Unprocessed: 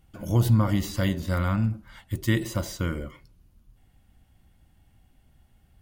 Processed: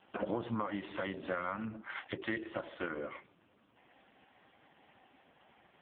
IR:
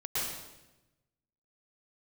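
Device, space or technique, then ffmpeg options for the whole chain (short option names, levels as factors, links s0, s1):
voicemail: -af "highpass=440,lowpass=2900,acompressor=threshold=0.00447:ratio=8,volume=5.31" -ar 8000 -c:a libopencore_amrnb -b:a 4750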